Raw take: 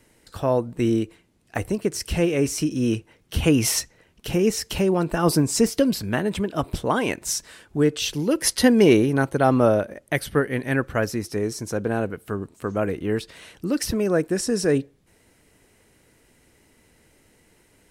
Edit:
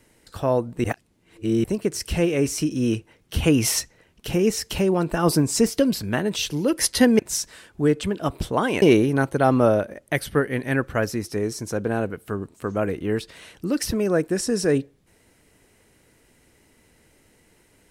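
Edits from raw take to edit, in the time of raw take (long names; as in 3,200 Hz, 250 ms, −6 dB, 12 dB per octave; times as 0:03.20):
0:00.84–0:01.64: reverse
0:06.36–0:07.15: swap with 0:07.99–0:08.82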